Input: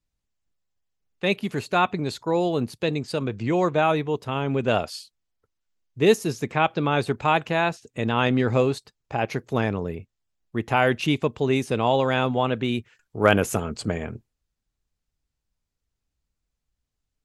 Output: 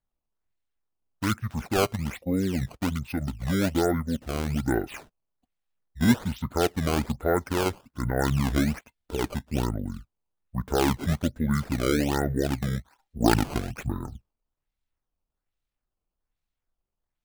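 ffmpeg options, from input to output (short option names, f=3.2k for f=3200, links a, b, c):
-af "asetrate=24046,aresample=44100,atempo=1.83401,acrusher=samples=14:mix=1:aa=0.000001:lfo=1:lforange=22.4:lforate=1.2,volume=-3dB"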